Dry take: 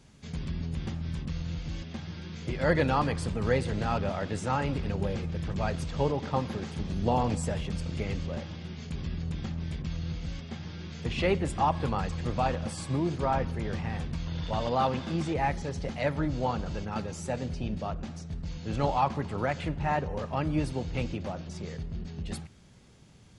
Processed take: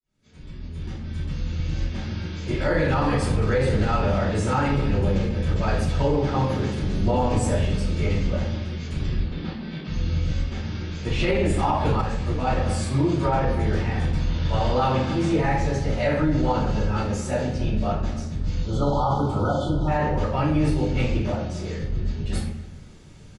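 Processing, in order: opening faded in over 2.01 s; 9.18–9.88 elliptic band-pass 170–4500 Hz, stop band 40 dB; 18.64–19.88 spectral delete 1500–3000 Hz; speakerphone echo 0.27 s, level -18 dB; shoebox room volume 110 m³, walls mixed, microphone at 2.8 m; limiter -9.5 dBFS, peak gain reduction 8 dB; 12.01–12.47 detuned doubles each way 32 cents; gain -3 dB

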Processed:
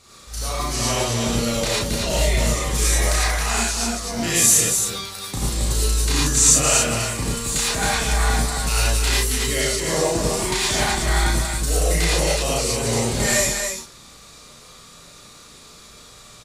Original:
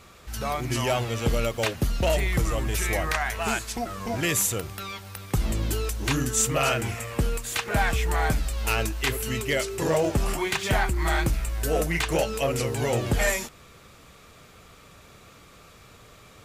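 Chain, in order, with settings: band shelf 6200 Hz +9.5 dB; loudspeakers at several distances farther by 12 m -2 dB, 93 m -4 dB; non-linear reverb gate 0.13 s rising, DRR -5.5 dB; gain -6 dB

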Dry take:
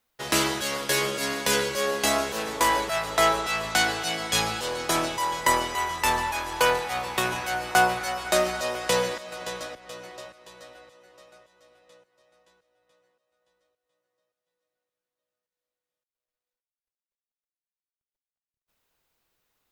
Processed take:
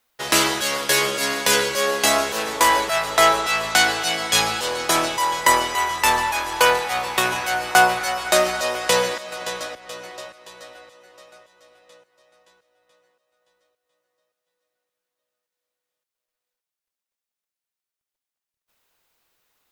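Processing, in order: low shelf 330 Hz -7.5 dB; gain +6.5 dB

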